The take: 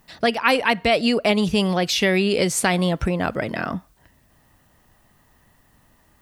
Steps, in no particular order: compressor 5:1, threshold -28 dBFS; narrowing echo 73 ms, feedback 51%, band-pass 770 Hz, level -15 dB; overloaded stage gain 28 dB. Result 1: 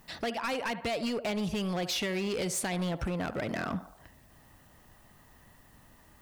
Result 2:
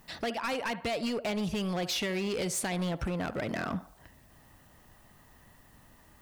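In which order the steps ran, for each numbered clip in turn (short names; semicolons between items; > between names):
narrowing echo > compressor > overloaded stage; compressor > narrowing echo > overloaded stage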